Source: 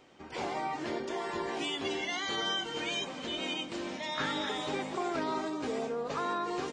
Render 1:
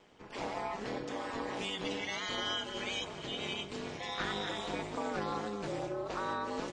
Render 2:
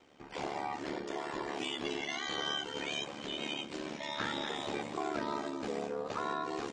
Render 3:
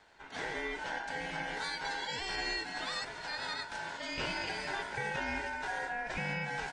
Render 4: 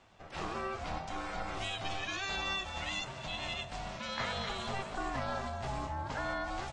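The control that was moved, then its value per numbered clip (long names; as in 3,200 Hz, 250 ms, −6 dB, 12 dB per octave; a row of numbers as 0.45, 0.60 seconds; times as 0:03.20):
ring modulation, frequency: 100, 36, 1,200, 390 Hertz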